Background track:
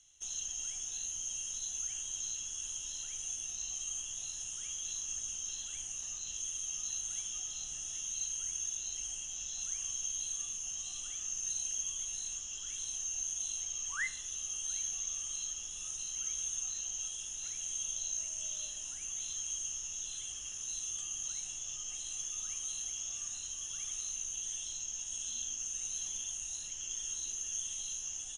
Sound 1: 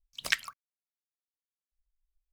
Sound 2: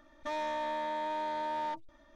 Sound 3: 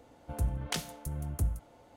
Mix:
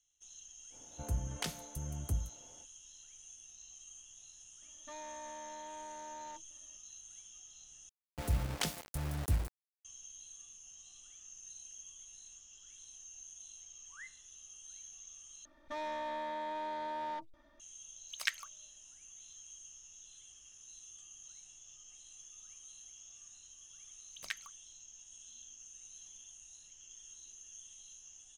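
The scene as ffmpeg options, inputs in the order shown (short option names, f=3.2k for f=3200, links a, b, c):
-filter_complex "[3:a]asplit=2[a][b];[2:a]asplit=2[c][d];[1:a]asplit=2[e][f];[0:a]volume=-14.5dB[g];[b]acrusher=bits=6:mix=0:aa=0.000001[h];[e]highpass=930[i];[g]asplit=3[j][k][l];[j]atrim=end=7.894[m];[h]atrim=end=1.96,asetpts=PTS-STARTPTS,volume=-1.5dB[n];[k]atrim=start=9.846:end=15.454[o];[d]atrim=end=2.15,asetpts=PTS-STARTPTS,volume=-4.5dB[p];[l]atrim=start=17.596[q];[a]atrim=end=1.96,asetpts=PTS-STARTPTS,volume=-4.5dB,afade=t=in:d=0.05,afade=t=out:st=1.91:d=0.05,adelay=700[r];[c]atrim=end=2.15,asetpts=PTS-STARTPTS,volume=-12.5dB,afade=t=in:d=0.004:c=hsin,afade=t=out:st=2.146:d=0.004:c=hsin,adelay=4620[s];[i]atrim=end=2.32,asetpts=PTS-STARTPTS,volume=-6dB,afade=t=in:d=0.004:c=hsin,afade=t=out:st=2.316:d=0.004:c=hsin,adelay=17950[t];[f]atrim=end=2.32,asetpts=PTS-STARTPTS,volume=-13dB,afade=t=in:d=0.004:c=hsin,afade=t=out:st=2.316:d=0.004:c=hsin,adelay=23980[u];[m][n]acrossfade=d=0.004:c1=hsin:c2=hsin[v];[v][o]acrossfade=d=0.004:c1=hsin:c2=hsin[w];[w][p]acrossfade=d=0.004:c1=hsin:c2=hsin[x];[x][q]acrossfade=d=0.004:c1=hsin:c2=hsin[y];[y][r][s][t][u]amix=inputs=5:normalize=0"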